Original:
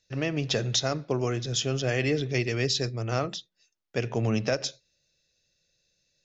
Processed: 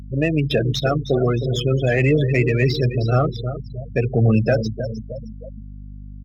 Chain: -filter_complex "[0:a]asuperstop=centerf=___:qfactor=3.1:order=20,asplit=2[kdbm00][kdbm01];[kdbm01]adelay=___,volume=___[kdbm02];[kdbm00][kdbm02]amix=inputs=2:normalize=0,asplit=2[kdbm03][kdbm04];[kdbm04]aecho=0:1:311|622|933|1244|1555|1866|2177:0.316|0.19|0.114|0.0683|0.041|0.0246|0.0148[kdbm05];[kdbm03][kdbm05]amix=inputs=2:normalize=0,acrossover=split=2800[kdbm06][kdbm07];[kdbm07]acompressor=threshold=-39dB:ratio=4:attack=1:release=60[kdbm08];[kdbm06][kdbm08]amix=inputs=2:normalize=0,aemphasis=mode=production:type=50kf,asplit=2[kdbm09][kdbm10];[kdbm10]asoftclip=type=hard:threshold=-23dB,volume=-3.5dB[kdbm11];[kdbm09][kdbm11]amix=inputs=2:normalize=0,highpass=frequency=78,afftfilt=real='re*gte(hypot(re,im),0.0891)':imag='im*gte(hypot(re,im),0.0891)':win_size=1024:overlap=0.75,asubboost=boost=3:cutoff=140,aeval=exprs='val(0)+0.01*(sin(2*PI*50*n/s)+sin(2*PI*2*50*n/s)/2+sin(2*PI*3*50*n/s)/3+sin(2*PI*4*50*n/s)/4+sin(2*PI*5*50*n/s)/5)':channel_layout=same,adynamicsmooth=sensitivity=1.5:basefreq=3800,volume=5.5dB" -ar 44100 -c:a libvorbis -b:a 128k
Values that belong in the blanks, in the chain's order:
930, 13, -12.5dB